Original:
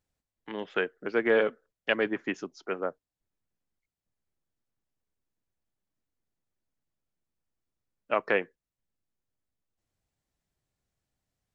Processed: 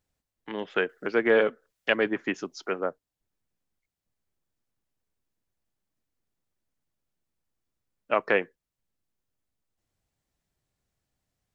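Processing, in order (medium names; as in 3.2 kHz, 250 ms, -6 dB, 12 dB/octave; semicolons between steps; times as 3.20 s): 0.89–2.74 s: tape noise reduction on one side only encoder only; trim +2.5 dB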